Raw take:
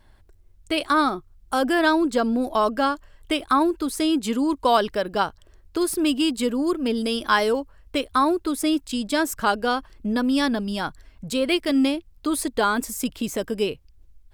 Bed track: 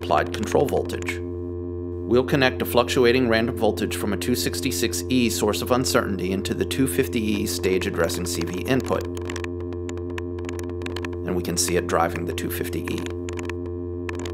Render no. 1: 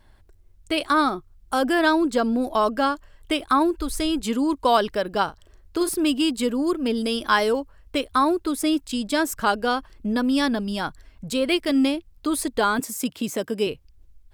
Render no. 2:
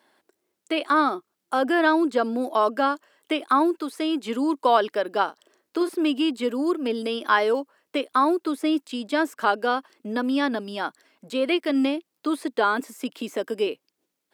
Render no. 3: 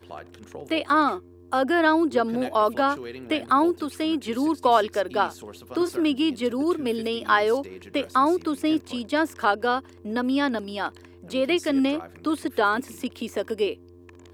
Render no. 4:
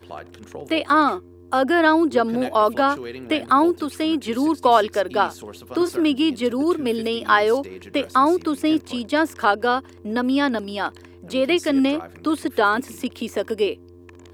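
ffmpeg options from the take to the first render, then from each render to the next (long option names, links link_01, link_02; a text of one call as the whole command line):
ffmpeg -i in.wav -filter_complex "[0:a]asplit=3[link_01][link_02][link_03];[link_01]afade=type=out:start_time=3.78:duration=0.02[link_04];[link_02]asubboost=boost=10:cutoff=68,afade=type=in:start_time=3.78:duration=0.02,afade=type=out:start_time=4.22:duration=0.02[link_05];[link_03]afade=type=in:start_time=4.22:duration=0.02[link_06];[link_04][link_05][link_06]amix=inputs=3:normalize=0,asettb=1/sr,asplit=3[link_07][link_08][link_09];[link_07]atrim=end=5.244[link_10];[link_08]atrim=start=5.24:end=5.89,asetpts=PTS-STARTPTS,afade=type=in:duration=0.004:curve=qsin,afade=type=out:start_time=0.646:duration=0.004:curve=qsin,asplit=2[link_11][link_12];[link_12]adelay=38,volume=-11dB[link_13];[link_11][link_13]amix=inputs=2:normalize=0,atrim=end_sample=28665[link_14];[link_09]atrim=start=5.886[link_15];[link_10][link_14]acrossfade=duration=0.004:curve1=hsin:curve2=qsin[link_16];[link_16][link_15]acrossfade=duration=0.004:curve1=qsin:curve2=hsin,asettb=1/sr,asplit=3[link_17][link_18][link_19];[link_17]atrim=end=12.794[link_20];[link_18]atrim=start=12.79:end=13.67,asetpts=PTS-STARTPTS,afade=type=in:duration=0.004:curve=qsin,afade=type=out:start_time=0.876:duration=0.004:curve=qsin,highpass=frequency=100:width=0.5412,highpass=frequency=100:width=1.3066[link_21];[link_19]atrim=start=13.666[link_22];[link_20][link_21]acrossfade=duration=0.004:curve1=hsin:curve2=qsin[link_23];[link_23][link_22]acrossfade=duration=0.004:curve1=qsin:curve2=hsin" out.wav
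ffmpeg -i in.wav -filter_complex "[0:a]highpass=frequency=260:width=0.5412,highpass=frequency=260:width=1.3066,acrossover=split=3400[link_01][link_02];[link_02]acompressor=threshold=-45dB:ratio=4:attack=1:release=60[link_03];[link_01][link_03]amix=inputs=2:normalize=0" out.wav
ffmpeg -i in.wav -i bed.wav -filter_complex "[1:a]volume=-19.5dB[link_01];[0:a][link_01]amix=inputs=2:normalize=0" out.wav
ffmpeg -i in.wav -af "volume=3.5dB" out.wav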